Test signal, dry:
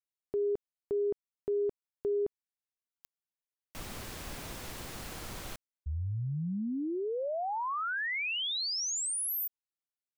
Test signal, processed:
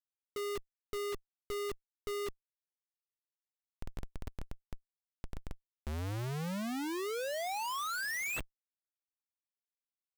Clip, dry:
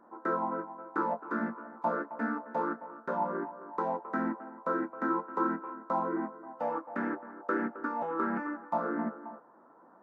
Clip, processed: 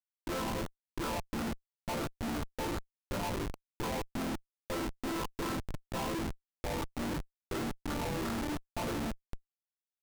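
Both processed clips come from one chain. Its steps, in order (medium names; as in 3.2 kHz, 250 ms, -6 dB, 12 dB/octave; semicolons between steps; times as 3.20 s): treble shelf 2.9 kHz -5 dB; phase dispersion highs, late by 71 ms, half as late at 610 Hz; Schmitt trigger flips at -33 dBFS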